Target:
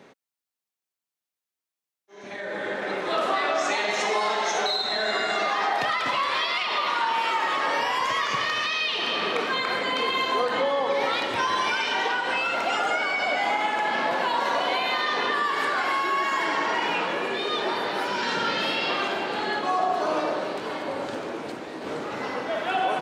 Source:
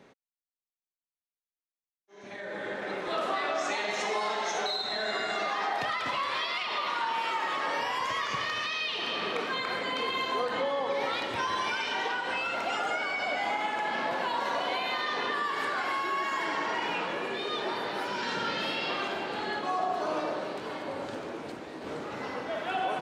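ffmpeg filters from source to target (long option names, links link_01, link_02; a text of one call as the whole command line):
ffmpeg -i in.wav -af "highpass=frequency=140:poles=1,volume=6dB" out.wav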